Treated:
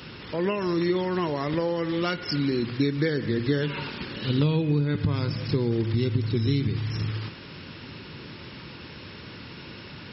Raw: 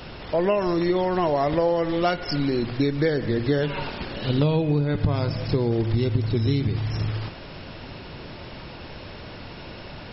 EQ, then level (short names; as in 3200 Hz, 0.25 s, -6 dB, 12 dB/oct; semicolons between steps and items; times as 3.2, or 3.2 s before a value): HPF 100 Hz 12 dB/oct; bell 680 Hz -13.5 dB 0.73 oct; 0.0 dB